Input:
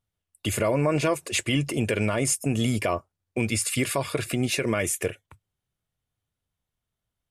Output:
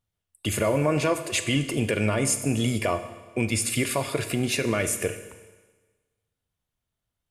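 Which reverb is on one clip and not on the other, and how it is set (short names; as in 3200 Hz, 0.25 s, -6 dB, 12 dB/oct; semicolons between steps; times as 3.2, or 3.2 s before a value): Schroeder reverb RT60 1.3 s, combs from 26 ms, DRR 9.5 dB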